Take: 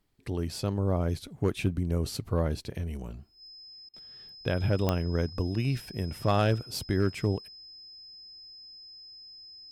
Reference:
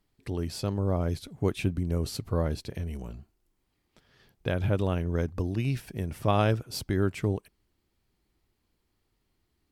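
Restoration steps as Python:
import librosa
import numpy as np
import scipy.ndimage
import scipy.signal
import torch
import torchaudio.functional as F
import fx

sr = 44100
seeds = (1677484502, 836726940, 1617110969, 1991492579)

y = fx.fix_declip(x, sr, threshold_db=-16.0)
y = fx.fix_declick_ar(y, sr, threshold=10.0)
y = fx.notch(y, sr, hz=5100.0, q=30.0)
y = fx.fix_interpolate(y, sr, at_s=(3.89,), length_ms=45.0)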